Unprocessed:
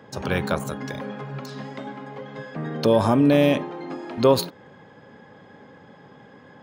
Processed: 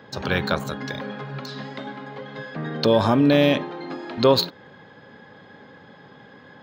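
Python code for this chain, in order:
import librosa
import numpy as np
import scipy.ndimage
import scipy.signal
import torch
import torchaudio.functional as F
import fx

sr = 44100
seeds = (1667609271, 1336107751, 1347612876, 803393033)

y = fx.graphic_eq_15(x, sr, hz=(1600, 4000, 10000), db=(4, 9, -11))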